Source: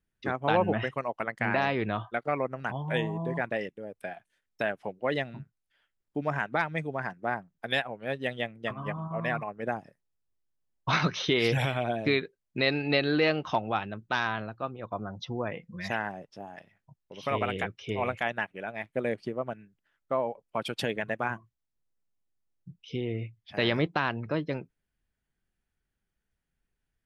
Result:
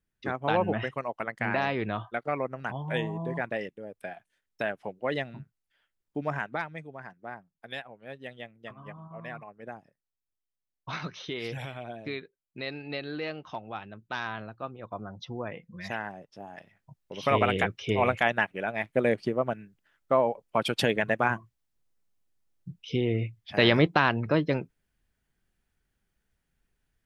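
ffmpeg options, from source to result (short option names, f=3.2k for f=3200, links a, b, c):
-af "volume=14.5dB,afade=t=out:st=6.31:d=0.51:silence=0.354813,afade=t=in:st=13.62:d=0.98:silence=0.446684,afade=t=in:st=16.29:d=0.85:silence=0.375837"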